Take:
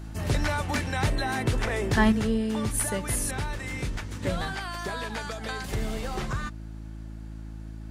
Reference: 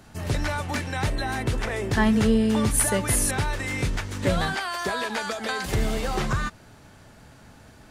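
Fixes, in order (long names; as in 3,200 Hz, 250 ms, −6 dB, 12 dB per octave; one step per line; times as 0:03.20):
hum removal 54.1 Hz, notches 6
level correction +6 dB, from 0:02.12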